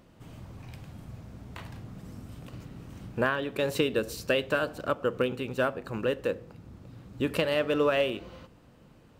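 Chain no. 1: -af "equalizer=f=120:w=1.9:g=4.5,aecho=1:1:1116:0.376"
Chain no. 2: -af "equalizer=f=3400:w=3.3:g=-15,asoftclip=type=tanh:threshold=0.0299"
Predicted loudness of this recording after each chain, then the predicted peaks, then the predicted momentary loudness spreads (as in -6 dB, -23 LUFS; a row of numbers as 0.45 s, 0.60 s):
-29.5 LUFS, -37.5 LUFS; -10.5 dBFS, -30.5 dBFS; 16 LU, 15 LU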